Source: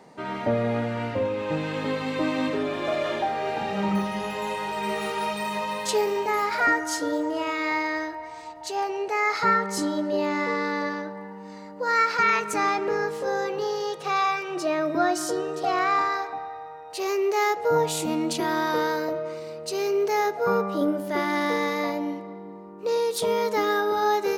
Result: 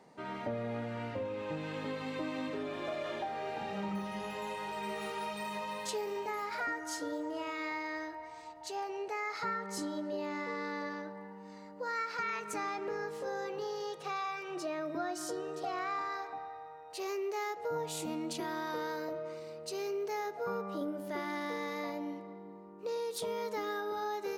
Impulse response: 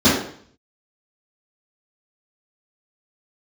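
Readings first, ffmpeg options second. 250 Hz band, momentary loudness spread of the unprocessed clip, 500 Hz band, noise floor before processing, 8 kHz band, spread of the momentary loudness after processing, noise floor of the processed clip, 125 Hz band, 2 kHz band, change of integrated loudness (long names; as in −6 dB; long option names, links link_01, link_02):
−12.0 dB, 10 LU, −12.0 dB, −41 dBFS, −11.0 dB, 6 LU, −50 dBFS, −11.5 dB, −13.0 dB, −12.5 dB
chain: -af "acompressor=threshold=-26dB:ratio=2.5,volume=-9dB"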